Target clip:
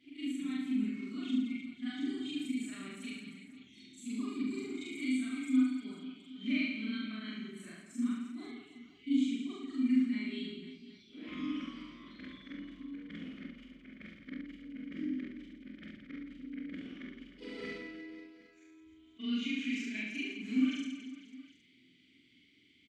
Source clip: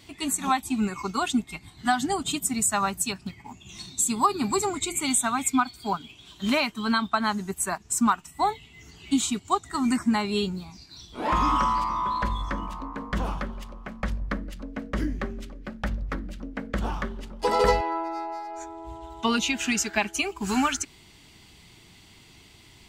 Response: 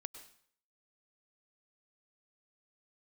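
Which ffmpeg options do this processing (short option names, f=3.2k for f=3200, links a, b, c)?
-filter_complex "[0:a]afftfilt=real='re':imag='-im':win_size=4096:overlap=0.75,asplit=3[a][b][c];[a]bandpass=f=270:t=q:w=8,volume=0dB[d];[b]bandpass=f=2.29k:t=q:w=8,volume=-6dB[e];[c]bandpass=f=3.01k:t=q:w=8,volume=-9dB[f];[d][e][f]amix=inputs=3:normalize=0,aecho=1:1:70|168|305.2|497.3|766.2:0.631|0.398|0.251|0.158|0.1,volume=2dB"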